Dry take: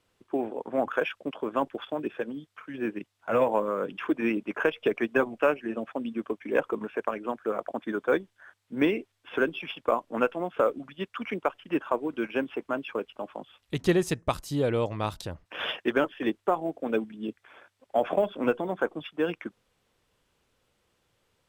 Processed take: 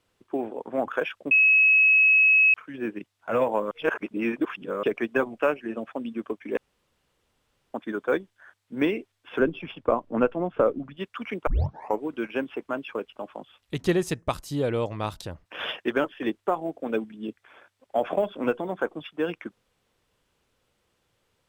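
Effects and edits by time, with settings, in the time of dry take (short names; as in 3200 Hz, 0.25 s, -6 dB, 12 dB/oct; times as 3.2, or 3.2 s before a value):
1.31–2.54 bleep 2570 Hz -14.5 dBFS
3.71–4.83 reverse
6.57–7.74 room tone
9.39–10.97 tilt -3 dB/oct
11.47 tape start 0.54 s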